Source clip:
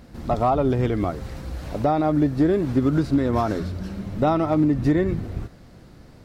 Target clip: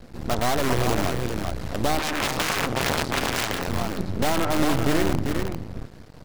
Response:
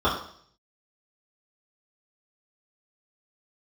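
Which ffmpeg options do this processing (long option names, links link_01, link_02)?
-filter_complex "[0:a]asplit=2[link_01][link_02];[link_02]aeval=exprs='(mod(7.94*val(0)+1,2)-1)/7.94':channel_layout=same,volume=-3dB[link_03];[link_01][link_03]amix=inputs=2:normalize=0,aecho=1:1:397:0.562,aeval=exprs='max(val(0),0)':channel_layout=same,asettb=1/sr,asplit=3[link_04][link_05][link_06];[link_04]atrim=end=1.994[link_07];[link_05]atrim=start=1.99:end=3.68,asetpts=PTS-STARTPTS,afade=type=in:duration=0.004:curve=qsin,afade=type=out:start_time=1.686:duration=0.004:curve=qsin,aeval=exprs='0.398*(cos(1*acos(clip(val(0)/0.398,-1,1)))-cos(1*PI/2))+0.0562*(cos(5*acos(clip(val(0)/0.398,-1,1)))-cos(5*PI/2))+0.158*(cos(8*acos(clip(val(0)/0.398,-1,1)))-cos(8*PI/2))':channel_layout=same[link_08];[link_06]atrim=start=3.676[link_09];[link_07][link_08]acrossfade=duration=0.004:curve1=hsin:curve2=qsin[link_10];[link_10][link_09]acrossfade=duration=0.004:curve1=qsin:curve2=hsin"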